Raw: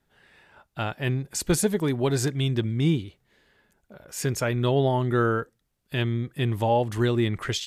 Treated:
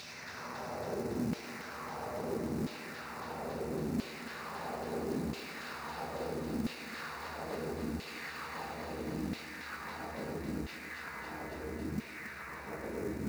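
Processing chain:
tube saturation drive 34 dB, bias 0.7
extreme stretch with random phases 9.5×, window 1.00 s, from 0:01.81
in parallel at +2 dB: compressor whose output falls as the input rises −43 dBFS, ratio −1
on the sum: wrong playback speed 78 rpm record played at 45 rpm
auto-filter band-pass saw down 0.75 Hz 230–3,100 Hz
floating-point word with a short mantissa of 2 bits
parametric band 3,200 Hz −12.5 dB 0.43 octaves
on a send: feedback echo with a high-pass in the loop 276 ms, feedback 76%, high-pass 880 Hz, level −4 dB
on the sum: level +5.5 dB

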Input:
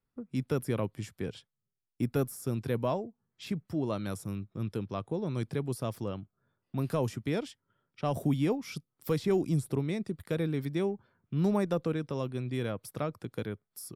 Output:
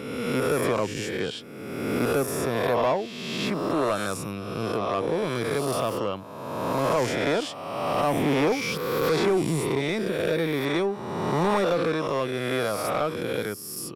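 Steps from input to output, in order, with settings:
peak hold with a rise ahead of every peak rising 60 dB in 1.52 s
mid-hump overdrive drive 18 dB, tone 4,700 Hz, clips at −13.5 dBFS

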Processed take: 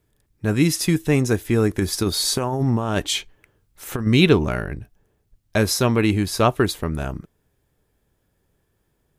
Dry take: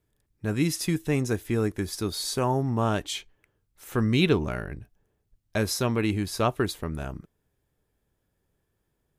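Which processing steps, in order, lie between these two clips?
0:01.69–0:04.07: compressor whose output falls as the input rises −27 dBFS, ratio −0.5
level +7 dB

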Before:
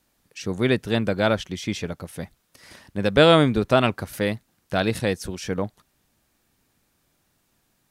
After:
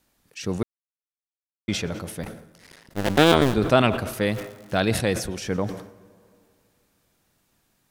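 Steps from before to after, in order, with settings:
0:02.23–0:03.54: sub-harmonics by changed cycles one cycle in 2, muted
0:04.28–0:04.79: surface crackle 260 per second −37 dBFS
dense smooth reverb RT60 2.4 s, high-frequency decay 0.5×, pre-delay 90 ms, DRR 19 dB
0:00.63–0:01.68: silence
level that may fall only so fast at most 84 dB per second

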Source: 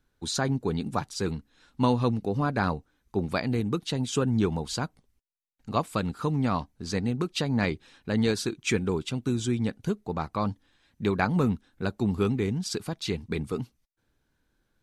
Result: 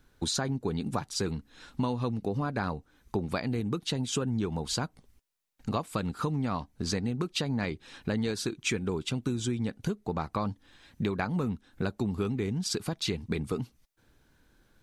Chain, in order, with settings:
downward compressor 5 to 1, threshold −38 dBFS, peak gain reduction 17 dB
level +9 dB

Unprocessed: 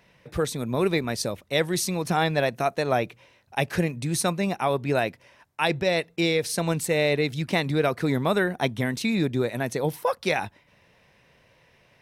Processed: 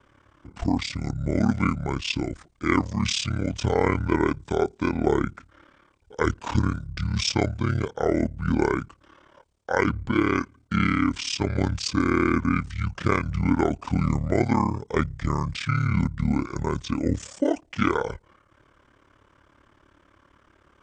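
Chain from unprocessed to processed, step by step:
ring modulation 31 Hz
wrong playback speed 78 rpm record played at 45 rpm
level +3.5 dB

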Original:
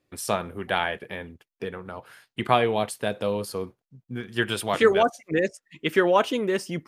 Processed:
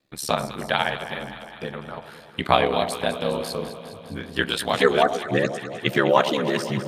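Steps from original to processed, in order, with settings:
thirty-one-band graphic EQ 100 Hz −11 dB, 160 Hz +7 dB, 250 Hz −3 dB, 400 Hz −5 dB, 4,000 Hz +9 dB, 10,000 Hz −3 dB
ring modulation 35 Hz
delay that swaps between a low-pass and a high-pass 102 ms, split 1,000 Hz, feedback 82%, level −10 dB
level +5 dB

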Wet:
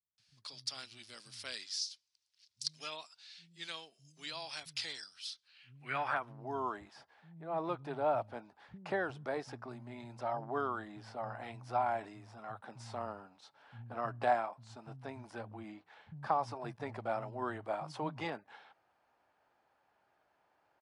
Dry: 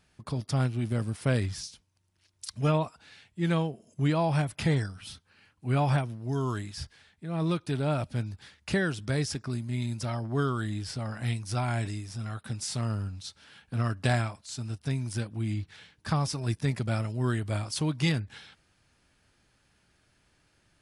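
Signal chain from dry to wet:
multiband delay without the direct sound lows, highs 180 ms, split 170 Hz
band-pass filter sweep 4,700 Hz → 800 Hz, 0:05.40–0:06.40
level +5 dB

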